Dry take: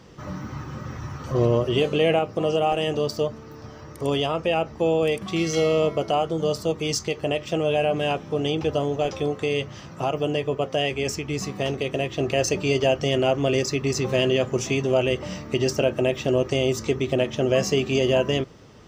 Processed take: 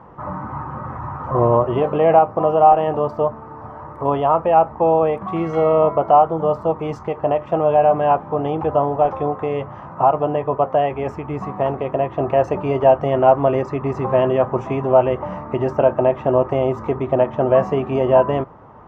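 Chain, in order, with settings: FFT filter 440 Hz 0 dB, 940 Hz +15 dB, 4.8 kHz -28 dB; trim +2 dB

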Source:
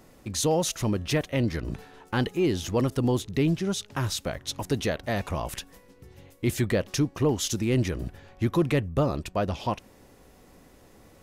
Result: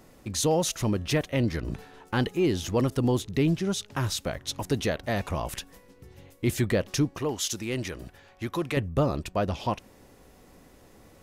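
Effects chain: 7.19–8.77 s: bass shelf 410 Hz -10.5 dB

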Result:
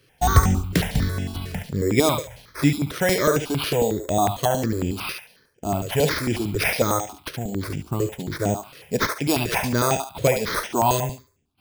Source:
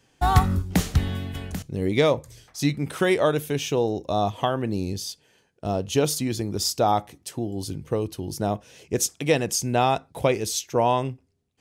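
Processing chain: careless resampling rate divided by 6×, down none, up hold; on a send: thinning echo 71 ms, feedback 32%, high-pass 680 Hz, level -5 dB; on the sum: stepped phaser 11 Hz 220–4200 Hz; trim +5 dB

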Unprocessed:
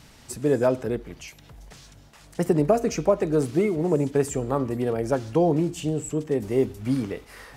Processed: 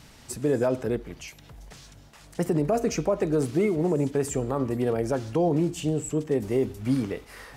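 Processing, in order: peak limiter -14.5 dBFS, peak gain reduction 7.5 dB

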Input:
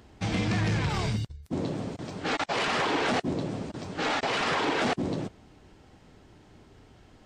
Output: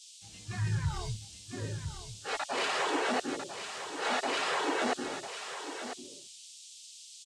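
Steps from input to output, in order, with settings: spectral noise reduction 16 dB; band noise 2.8–8.6 kHz -44 dBFS; on a send: delay 999 ms -6 dB; on the sum: three bands expanded up and down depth 70%; trim -4.5 dB

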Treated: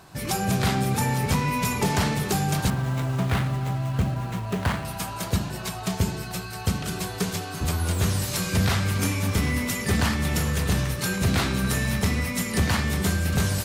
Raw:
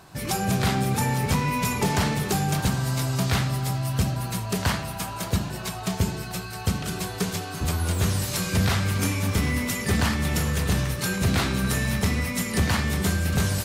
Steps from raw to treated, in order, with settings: 2.70–4.85 s: median filter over 9 samples

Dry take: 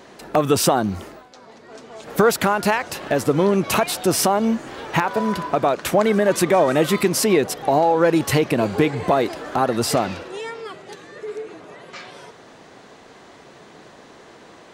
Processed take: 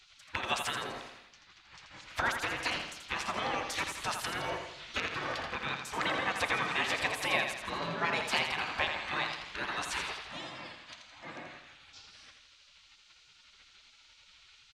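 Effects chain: low-pass 3.9 kHz 12 dB/octave; band-stop 1.4 kHz, Q 11; spectral gate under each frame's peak -20 dB weak; on a send: feedback delay 83 ms, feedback 49%, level -6.5 dB

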